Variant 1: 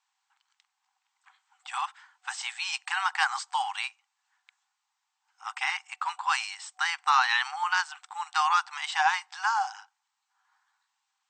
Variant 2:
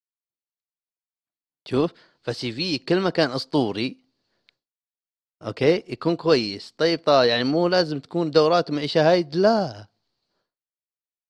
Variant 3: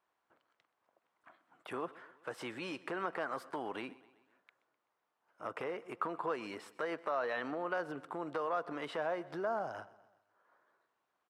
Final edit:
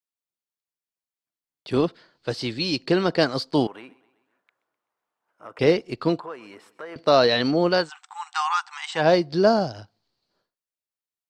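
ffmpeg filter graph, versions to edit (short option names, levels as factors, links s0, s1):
-filter_complex "[2:a]asplit=2[s0][s1];[1:a]asplit=4[s2][s3][s4][s5];[s2]atrim=end=3.672[s6];[s0]atrim=start=3.668:end=5.592[s7];[s3]atrim=start=5.588:end=6.202[s8];[s1]atrim=start=6.198:end=6.962[s9];[s4]atrim=start=6.958:end=7.9[s10];[0:a]atrim=start=7.74:end=9.09[s11];[s5]atrim=start=8.93[s12];[s6][s7]acrossfade=d=0.004:c1=hsin:c2=hsin[s13];[s13][s8]acrossfade=d=0.004:c1=hsin:c2=hsin[s14];[s14][s9]acrossfade=d=0.004:c1=hsin:c2=hsin[s15];[s15][s10]acrossfade=d=0.004:c1=hsin:c2=hsin[s16];[s16][s11]acrossfade=d=0.16:c1=tri:c2=tri[s17];[s17][s12]acrossfade=d=0.16:c1=tri:c2=tri"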